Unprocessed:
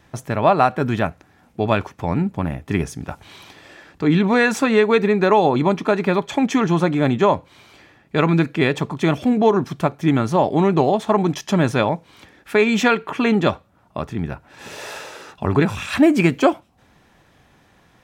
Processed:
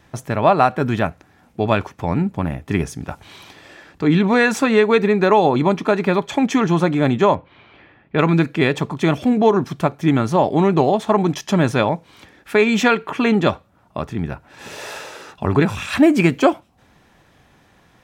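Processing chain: 7.35–8.19 s: low-pass 3.2 kHz 24 dB/octave; trim +1 dB

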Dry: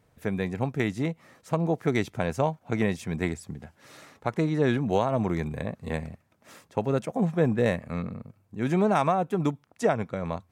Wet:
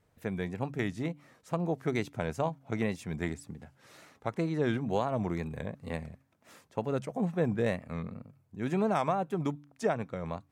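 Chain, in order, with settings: de-hum 139.5 Hz, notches 2; wow and flutter 80 cents; trim -5.5 dB

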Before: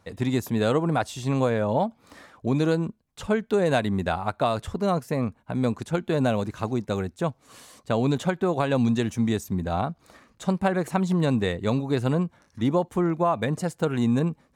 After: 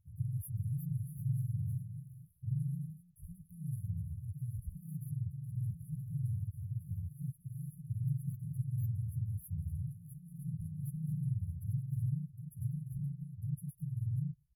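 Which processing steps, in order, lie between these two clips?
harmony voices -3 st -4 dB, +3 st -7 dB; ever faster or slower copies 418 ms, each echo +2 st, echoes 2, each echo -6 dB; brick-wall FIR band-stop 160–10000 Hz; trim -7.5 dB

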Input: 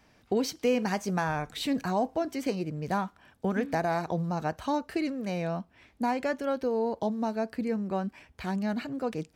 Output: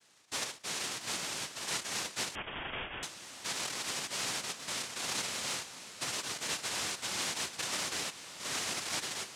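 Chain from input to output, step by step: comb filter that takes the minimum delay 7.6 ms; hum notches 60/120/180/240/300/360 Hz; peak limiter -29.5 dBFS, peak gain reduction 13.5 dB; noise-vocoded speech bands 1; echo that smears into a reverb 622 ms, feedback 61%, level -13.5 dB; 2.35–3.03 s: frequency inversion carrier 3.5 kHz

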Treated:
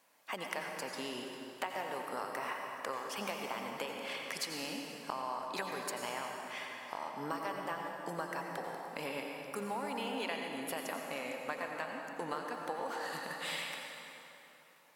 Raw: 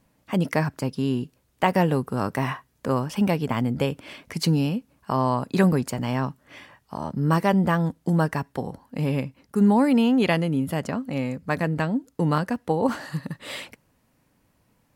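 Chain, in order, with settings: high-pass 690 Hz 12 dB/octave; compression, threshold -39 dBFS, peak gain reduction 20.5 dB; plate-style reverb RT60 3.3 s, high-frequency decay 0.7×, pre-delay 75 ms, DRR 1 dB; trim +1.5 dB

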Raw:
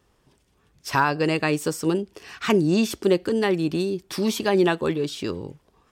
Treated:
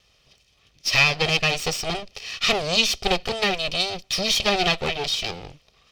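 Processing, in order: comb filter that takes the minimum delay 1.6 ms; high-order bell 3.7 kHz +13.5 dB

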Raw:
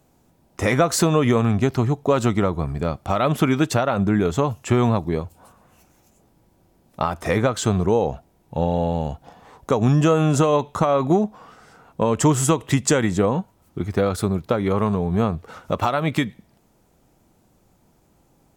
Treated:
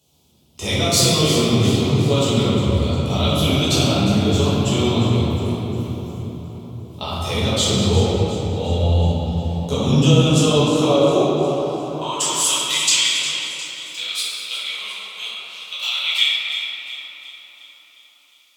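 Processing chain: chunks repeated in reverse 188 ms, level -12 dB; resonant high shelf 2.4 kHz +11 dB, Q 3; on a send: two-band feedback delay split 1.4 kHz, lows 556 ms, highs 356 ms, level -12 dB; on the sum: high-pass sweep 73 Hz -> 2.3 kHz, 9.07–12.91 s; simulated room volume 170 m³, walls hard, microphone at 1.4 m; trim -11.5 dB

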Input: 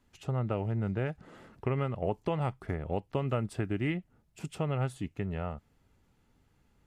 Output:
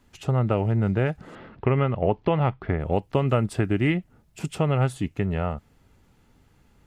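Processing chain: 1.35–2.80 s: low-pass 3.8 kHz 24 dB/octave; trim +9 dB

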